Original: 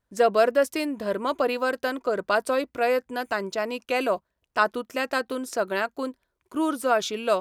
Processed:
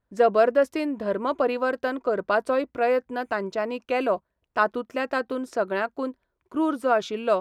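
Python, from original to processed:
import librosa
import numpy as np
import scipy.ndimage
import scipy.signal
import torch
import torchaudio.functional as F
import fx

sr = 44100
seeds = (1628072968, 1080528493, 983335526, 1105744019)

y = fx.lowpass(x, sr, hz=1700.0, slope=6)
y = y * 10.0 ** (1.5 / 20.0)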